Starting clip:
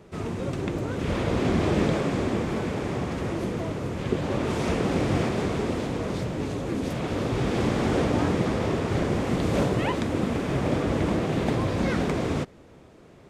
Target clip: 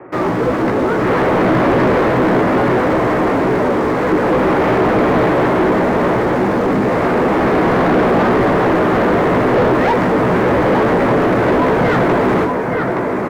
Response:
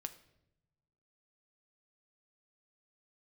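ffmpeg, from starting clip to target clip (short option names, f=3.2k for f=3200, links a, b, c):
-filter_complex "[0:a]bandreject=f=50:t=h:w=6,bandreject=f=100:t=h:w=6,bandreject=f=150:t=h:w=6,bandreject=f=200:t=h:w=6,bandreject=f=250:t=h:w=6,bandreject=f=300:t=h:w=6,bandreject=f=350:t=h:w=6,highpass=f=160:t=q:w=0.5412,highpass=f=160:t=q:w=1.307,lowpass=f=2.2k:t=q:w=0.5176,lowpass=f=2.2k:t=q:w=0.7071,lowpass=f=2.2k:t=q:w=1.932,afreqshift=-61,asplit=2[a][b];[b]acrusher=bits=6:mix=0:aa=0.000001,volume=-3.5dB[c];[a][c]amix=inputs=2:normalize=0,asplit=2[d][e];[e]adelay=16,volume=-6dB[f];[d][f]amix=inputs=2:normalize=0,asplit=2[g][h];[h]aecho=0:1:871:0.398[i];[g][i]amix=inputs=2:normalize=0,asplit=2[j][k];[k]highpass=f=720:p=1,volume=26dB,asoftclip=type=tanh:threshold=-6.5dB[l];[j][l]amix=inputs=2:normalize=0,lowpass=f=1.2k:p=1,volume=-6dB,volume=2dB"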